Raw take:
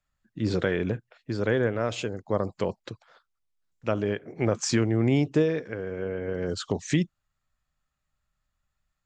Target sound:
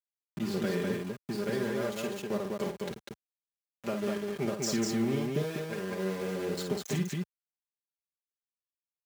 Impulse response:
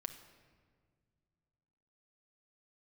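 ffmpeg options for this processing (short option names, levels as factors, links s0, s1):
-af "acompressor=threshold=0.00891:ratio=2,equalizer=f=1600:w=0.52:g=-3.5,aeval=exprs='val(0)*gte(abs(val(0)),0.00841)':c=same,highpass=67,aecho=1:1:5:0.81,aecho=1:1:52.48|198.3:0.447|0.708,volume=1.26"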